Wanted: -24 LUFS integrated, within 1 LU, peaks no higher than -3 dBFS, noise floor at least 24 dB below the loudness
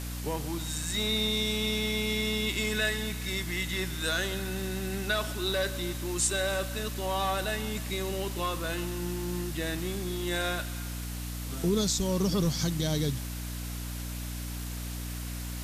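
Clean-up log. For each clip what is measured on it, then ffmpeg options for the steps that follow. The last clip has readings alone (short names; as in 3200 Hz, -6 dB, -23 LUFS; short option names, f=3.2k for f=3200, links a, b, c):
hum 60 Hz; harmonics up to 300 Hz; hum level -34 dBFS; noise floor -36 dBFS; noise floor target -55 dBFS; loudness -31.0 LUFS; peak -15.0 dBFS; loudness target -24.0 LUFS
-> -af "bandreject=f=60:t=h:w=6,bandreject=f=120:t=h:w=6,bandreject=f=180:t=h:w=6,bandreject=f=240:t=h:w=6,bandreject=f=300:t=h:w=6"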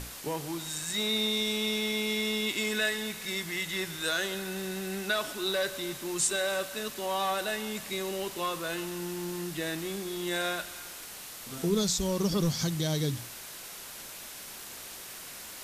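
hum none; noise floor -44 dBFS; noise floor target -56 dBFS
-> -af "afftdn=nr=12:nf=-44"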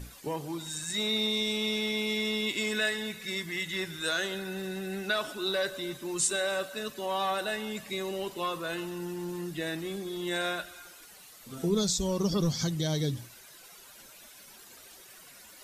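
noise floor -52 dBFS; noise floor target -55 dBFS
-> -af "afftdn=nr=6:nf=-52"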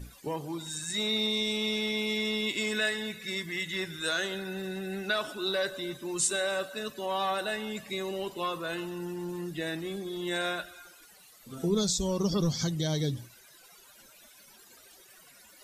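noise floor -56 dBFS; loudness -31.5 LUFS; peak -16.0 dBFS; loudness target -24.0 LUFS
-> -af "volume=7.5dB"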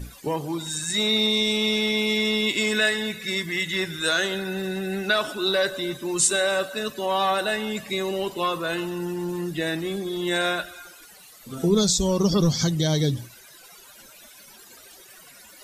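loudness -24.0 LUFS; peak -8.5 dBFS; noise floor -49 dBFS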